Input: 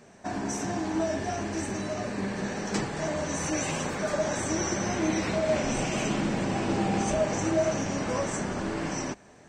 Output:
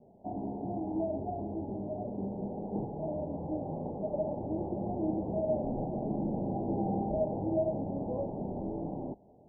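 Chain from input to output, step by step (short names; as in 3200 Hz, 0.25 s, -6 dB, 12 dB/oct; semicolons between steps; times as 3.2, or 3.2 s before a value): steep low-pass 860 Hz 72 dB/oct; gain -4.5 dB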